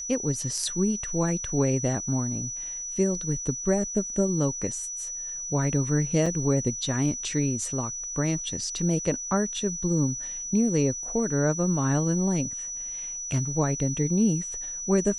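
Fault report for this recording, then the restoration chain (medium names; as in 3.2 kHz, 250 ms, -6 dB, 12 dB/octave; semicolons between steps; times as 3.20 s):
whine 5.9 kHz -32 dBFS
6.26 s: dropout 4.2 ms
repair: band-stop 5.9 kHz, Q 30; interpolate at 6.26 s, 4.2 ms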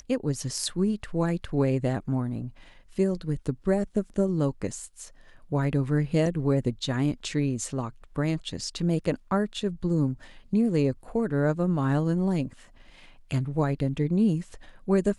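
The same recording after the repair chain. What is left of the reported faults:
nothing left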